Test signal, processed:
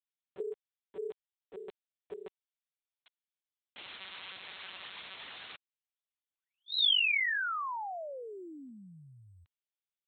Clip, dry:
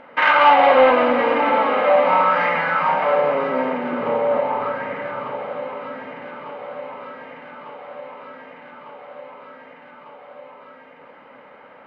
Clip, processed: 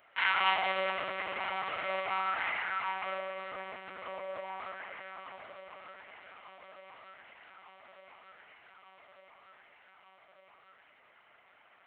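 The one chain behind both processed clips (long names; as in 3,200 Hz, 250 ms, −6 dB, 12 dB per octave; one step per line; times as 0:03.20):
one-pitch LPC vocoder at 8 kHz 190 Hz
first difference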